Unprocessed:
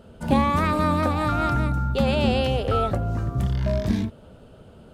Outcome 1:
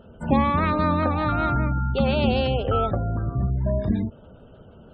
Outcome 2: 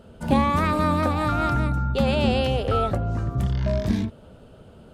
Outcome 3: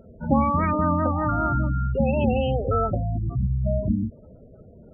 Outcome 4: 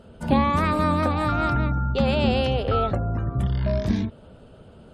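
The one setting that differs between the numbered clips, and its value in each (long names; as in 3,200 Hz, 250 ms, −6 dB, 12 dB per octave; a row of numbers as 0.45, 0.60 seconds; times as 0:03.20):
gate on every frequency bin, under each frame's peak: −30, −60, −15, −45 decibels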